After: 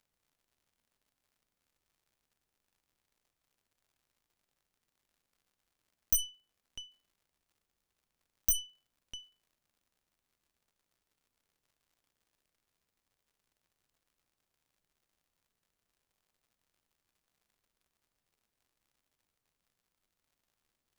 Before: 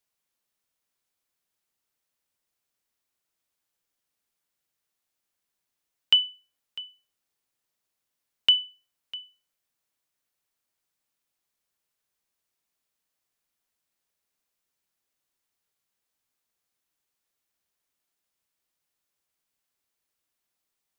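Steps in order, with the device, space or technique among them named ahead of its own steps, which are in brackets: record under a worn stylus (tracing distortion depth 0.47 ms; crackle 120/s -54 dBFS; pink noise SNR 42 dB); gain -8.5 dB

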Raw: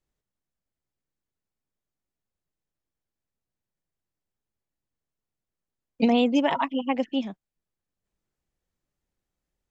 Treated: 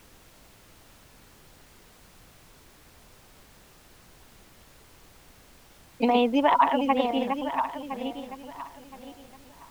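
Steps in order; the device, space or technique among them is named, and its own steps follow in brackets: regenerating reverse delay 0.508 s, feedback 50%, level -5.5 dB; horn gramophone (BPF 260–3600 Hz; bell 980 Hz +7.5 dB; wow and flutter; pink noise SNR 23 dB)

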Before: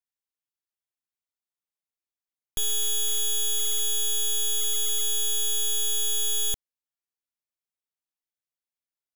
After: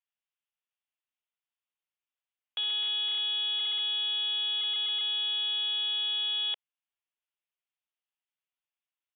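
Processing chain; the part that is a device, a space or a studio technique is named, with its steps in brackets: musical greeting card (downsampling 8000 Hz; HPF 640 Hz 24 dB/oct; bell 2800 Hz +6.5 dB 0.42 oct)

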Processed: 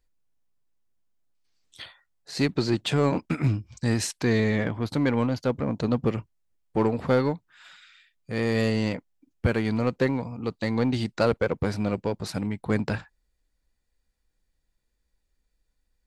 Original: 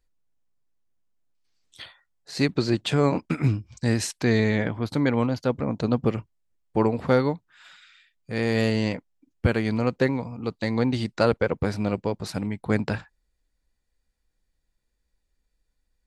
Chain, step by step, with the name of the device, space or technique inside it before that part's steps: parallel distortion (in parallel at -4.5 dB: hard clip -22 dBFS, distortion -7 dB); on the sum: gain -4 dB

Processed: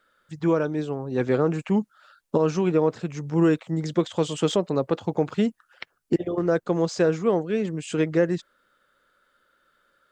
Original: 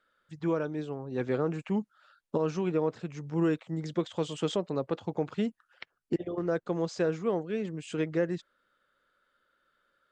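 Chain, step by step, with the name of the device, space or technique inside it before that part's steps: exciter from parts (in parallel at -5.5 dB: HPF 4600 Hz 12 dB/oct + soft clip -38.5 dBFS, distortion -19 dB); on the sum: gain +7.5 dB

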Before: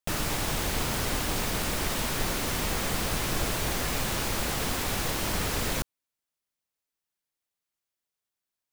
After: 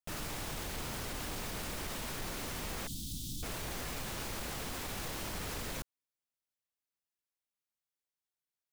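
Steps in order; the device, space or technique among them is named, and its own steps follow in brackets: 2.87–3.43 Chebyshev band-stop 290–3400 Hz, order 4; soft clipper into limiter (soft clip -18.5 dBFS, distortion -24 dB; limiter -23.5 dBFS, peak gain reduction 4 dB); gain -8 dB

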